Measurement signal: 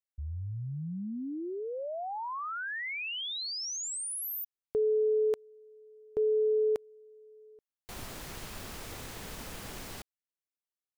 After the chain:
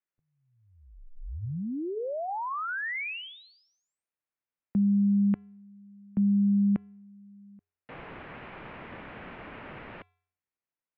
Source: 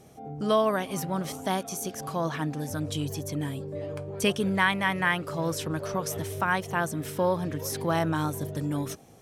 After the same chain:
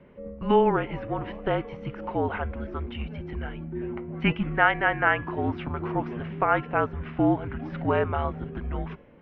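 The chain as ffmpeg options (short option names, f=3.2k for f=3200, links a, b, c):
-af "bandreject=f=319.6:t=h:w=4,bandreject=f=639.2:t=h:w=4,bandreject=f=958.8:t=h:w=4,bandreject=f=1.2784k:t=h:w=4,bandreject=f=1.598k:t=h:w=4,bandreject=f=1.9176k:t=h:w=4,bandreject=f=2.2372k:t=h:w=4,bandreject=f=2.5568k:t=h:w=4,bandreject=f=2.8764k:t=h:w=4,bandreject=f=3.196k:t=h:w=4,bandreject=f=3.5156k:t=h:w=4,bandreject=f=3.8352k:t=h:w=4,bandreject=f=4.1548k:t=h:w=4,bandreject=f=4.4744k:t=h:w=4,bandreject=f=4.794k:t=h:w=4,bandreject=f=5.1136k:t=h:w=4,bandreject=f=5.4332k:t=h:w=4,bandreject=f=5.7528k:t=h:w=4,bandreject=f=6.0724k:t=h:w=4,bandreject=f=6.392k:t=h:w=4,bandreject=f=6.7116k:t=h:w=4,bandreject=f=7.0312k:t=h:w=4,bandreject=f=7.3508k:t=h:w=4,bandreject=f=7.6704k:t=h:w=4,bandreject=f=7.99k:t=h:w=4,bandreject=f=8.3096k:t=h:w=4,bandreject=f=8.6292k:t=h:w=4,highpass=f=300:t=q:w=0.5412,highpass=f=300:t=q:w=1.307,lowpass=f=2.8k:t=q:w=0.5176,lowpass=f=2.8k:t=q:w=0.7071,lowpass=f=2.8k:t=q:w=1.932,afreqshift=-230,volume=4dB"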